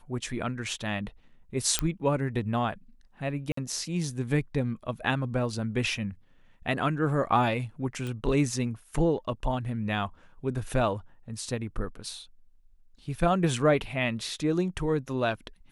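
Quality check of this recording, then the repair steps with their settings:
1.79 s: pop -7 dBFS
3.52–3.57 s: dropout 54 ms
8.07 s: pop -23 dBFS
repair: de-click; interpolate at 3.52 s, 54 ms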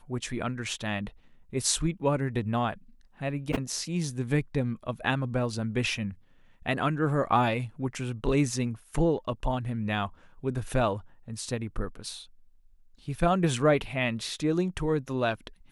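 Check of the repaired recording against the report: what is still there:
nothing left

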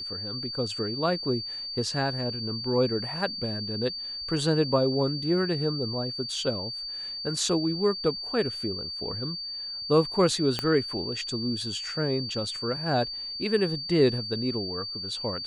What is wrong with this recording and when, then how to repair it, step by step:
whine 4.6 kHz -33 dBFS
10.59 s: pop -13 dBFS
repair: de-click; band-stop 4.6 kHz, Q 30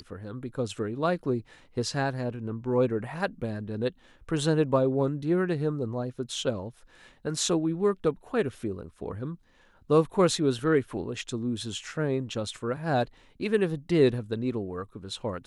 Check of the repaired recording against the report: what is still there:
10.59 s: pop

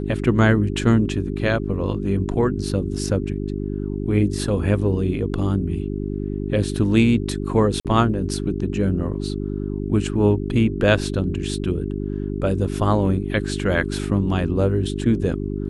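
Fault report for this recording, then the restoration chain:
hum 50 Hz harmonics 8 -26 dBFS
7.80–7.85 s: dropout 47 ms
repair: de-hum 50 Hz, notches 8; interpolate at 7.80 s, 47 ms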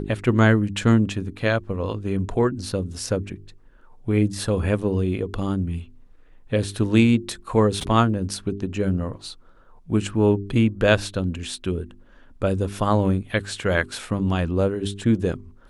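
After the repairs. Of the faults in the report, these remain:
nothing left

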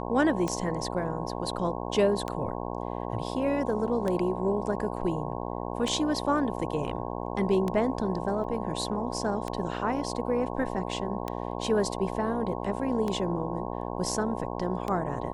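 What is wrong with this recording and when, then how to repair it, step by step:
buzz 60 Hz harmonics 18 -34 dBFS
tick 33 1/3 rpm -17 dBFS
8.44 s: dropout 3 ms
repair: de-click; de-hum 60 Hz, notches 18; interpolate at 8.44 s, 3 ms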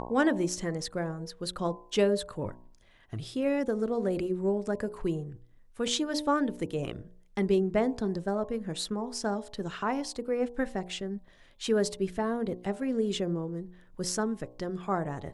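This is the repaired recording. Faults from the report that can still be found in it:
nothing left

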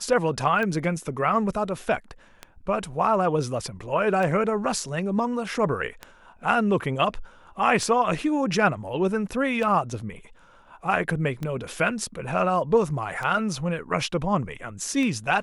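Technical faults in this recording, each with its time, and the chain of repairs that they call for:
tick 33 1/3 rpm -17 dBFS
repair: de-click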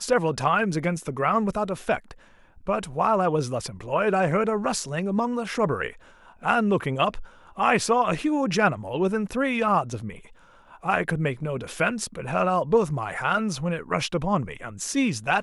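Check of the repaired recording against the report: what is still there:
nothing left

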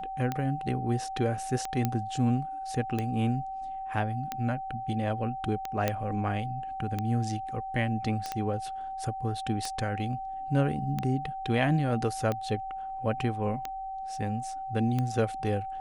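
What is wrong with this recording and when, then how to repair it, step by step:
tick 45 rpm -17 dBFS
whine 770 Hz -34 dBFS
1.85 s: pop -13 dBFS
5.88 s: pop -12 dBFS
8.26 s: pop -20 dBFS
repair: de-click; band-stop 770 Hz, Q 30

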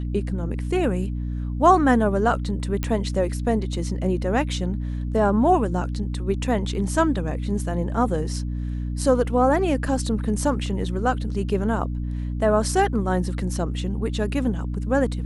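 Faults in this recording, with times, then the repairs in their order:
hum 60 Hz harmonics 5 -27 dBFS
2.83 s: pop -11 dBFS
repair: de-click; de-hum 60 Hz, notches 5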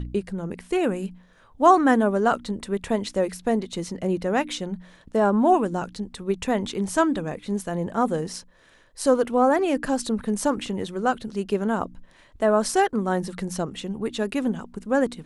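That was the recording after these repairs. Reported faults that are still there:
nothing left

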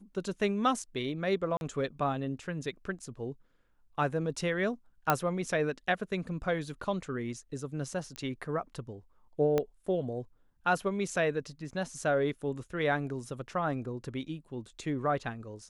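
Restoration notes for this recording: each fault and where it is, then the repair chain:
1.57–1.61 s: dropout 41 ms
5.10 s: pop -10 dBFS
8.16 s: pop -23 dBFS
9.58 s: pop -16 dBFS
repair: de-click; interpolate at 1.57 s, 41 ms

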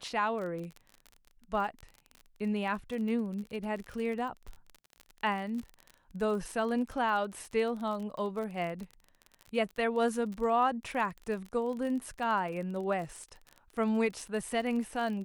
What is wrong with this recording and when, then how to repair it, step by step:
crackle 38 per s -37 dBFS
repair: de-click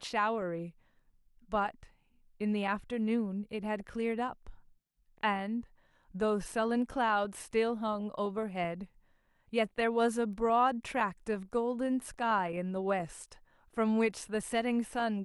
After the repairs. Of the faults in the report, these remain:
nothing left

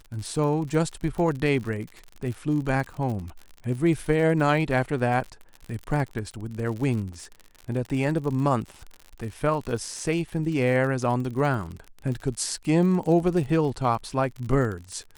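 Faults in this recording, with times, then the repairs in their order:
crackle 59 per s -32 dBFS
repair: de-click

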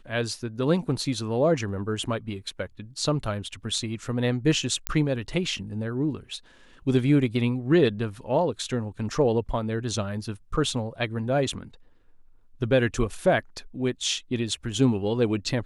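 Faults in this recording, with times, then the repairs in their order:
4.87 s: pop -8 dBFS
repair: de-click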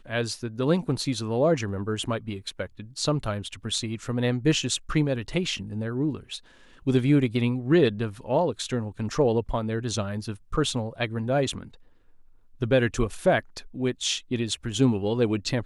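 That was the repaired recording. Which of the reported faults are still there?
nothing left

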